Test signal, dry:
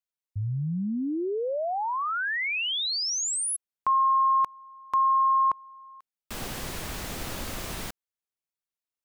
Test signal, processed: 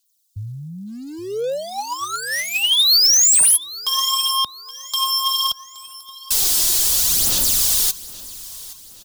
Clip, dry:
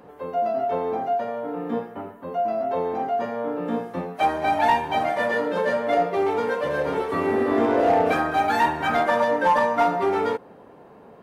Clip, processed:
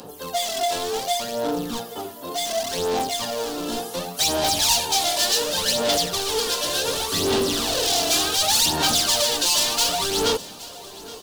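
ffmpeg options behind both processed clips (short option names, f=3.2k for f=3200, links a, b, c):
-filter_complex "[0:a]acrossover=split=120[a][b];[b]asoftclip=type=hard:threshold=-26.5dB[c];[a][c]amix=inputs=2:normalize=0,aphaser=in_gain=1:out_gain=1:delay=3:decay=0.58:speed=0.68:type=sinusoidal,aexciter=amount=6.8:drive=9.4:freq=3.2k,asoftclip=type=tanh:threshold=-11.5dB,aecho=1:1:821|1642|2463|3284:0.119|0.0535|0.0241|0.0108"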